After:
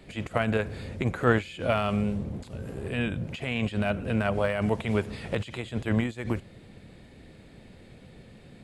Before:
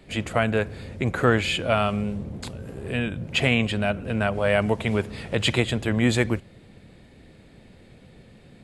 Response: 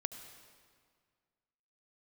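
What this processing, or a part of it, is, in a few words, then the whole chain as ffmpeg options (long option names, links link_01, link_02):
de-esser from a sidechain: -filter_complex "[0:a]asplit=2[link_01][link_02];[link_02]highpass=frequency=6100:width=0.5412,highpass=frequency=6100:width=1.3066,apad=whole_len=380679[link_03];[link_01][link_03]sidechaincompress=threshold=-55dB:ratio=16:attack=4.2:release=54"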